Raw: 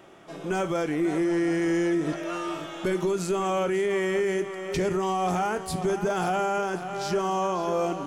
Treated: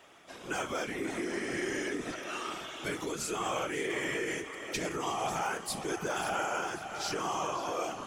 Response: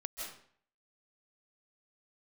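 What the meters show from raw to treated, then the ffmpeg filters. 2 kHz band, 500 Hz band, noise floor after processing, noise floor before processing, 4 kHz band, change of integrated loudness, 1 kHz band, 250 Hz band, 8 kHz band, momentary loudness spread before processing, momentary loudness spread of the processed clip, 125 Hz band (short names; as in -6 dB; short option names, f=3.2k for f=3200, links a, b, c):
-1.5 dB, -10.5 dB, -47 dBFS, -39 dBFS, 0.0 dB, -7.5 dB, -6.5 dB, -11.5 dB, +0.5 dB, 6 LU, 5 LU, -12.0 dB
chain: -af "tiltshelf=f=920:g=-7,bandreject=f=57.08:t=h:w=4,bandreject=f=114.16:t=h:w=4,bandreject=f=171.24:t=h:w=4,bandreject=f=228.32:t=h:w=4,bandreject=f=285.4:t=h:w=4,afftfilt=real='hypot(re,im)*cos(2*PI*random(0))':imag='hypot(re,im)*sin(2*PI*random(1))':win_size=512:overlap=0.75"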